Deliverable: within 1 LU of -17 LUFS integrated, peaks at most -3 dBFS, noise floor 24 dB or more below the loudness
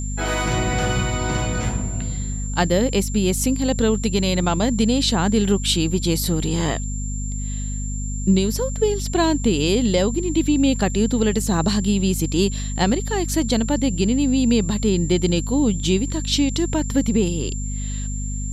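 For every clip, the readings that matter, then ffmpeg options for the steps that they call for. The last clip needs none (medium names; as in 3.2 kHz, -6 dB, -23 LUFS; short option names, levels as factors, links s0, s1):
hum 50 Hz; highest harmonic 250 Hz; hum level -24 dBFS; steady tone 7.3 kHz; tone level -33 dBFS; loudness -21.0 LUFS; peak level -5.0 dBFS; loudness target -17.0 LUFS
-> -af "bandreject=f=50:t=h:w=6,bandreject=f=100:t=h:w=6,bandreject=f=150:t=h:w=6,bandreject=f=200:t=h:w=6,bandreject=f=250:t=h:w=6"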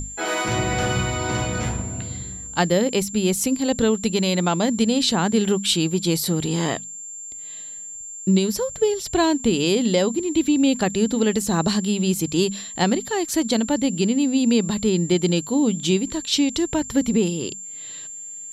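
hum not found; steady tone 7.3 kHz; tone level -33 dBFS
-> -af "bandreject=f=7300:w=30"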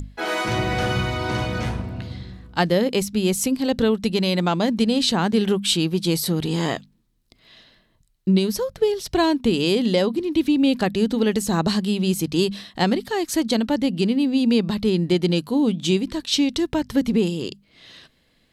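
steady tone not found; loudness -21.5 LUFS; peak level -6.5 dBFS; loudness target -17.0 LUFS
-> -af "volume=1.68,alimiter=limit=0.708:level=0:latency=1"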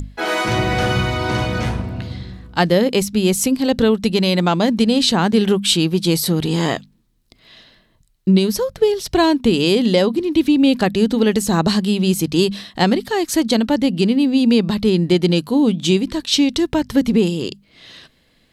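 loudness -17.0 LUFS; peak level -3.0 dBFS; noise floor -58 dBFS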